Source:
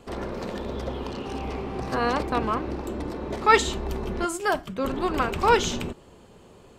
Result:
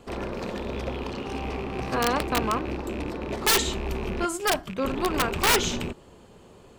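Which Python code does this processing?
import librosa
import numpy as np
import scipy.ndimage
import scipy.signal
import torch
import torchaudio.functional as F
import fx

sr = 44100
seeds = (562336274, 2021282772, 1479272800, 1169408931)

y = fx.rattle_buzz(x, sr, strikes_db=-33.0, level_db=-28.0)
y = (np.mod(10.0 ** (14.0 / 20.0) * y + 1.0, 2.0) - 1.0) / 10.0 ** (14.0 / 20.0)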